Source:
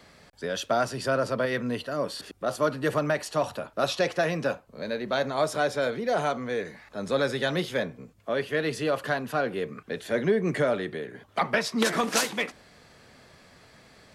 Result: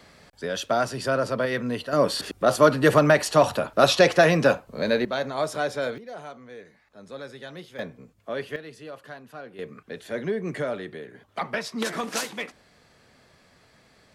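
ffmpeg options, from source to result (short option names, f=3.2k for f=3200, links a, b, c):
-af "asetnsamples=n=441:p=0,asendcmd='1.93 volume volume 8.5dB;5.05 volume volume -1dB;5.98 volume volume -13dB;7.79 volume volume -3dB;8.56 volume volume -13.5dB;9.59 volume volume -4dB',volume=1.5dB"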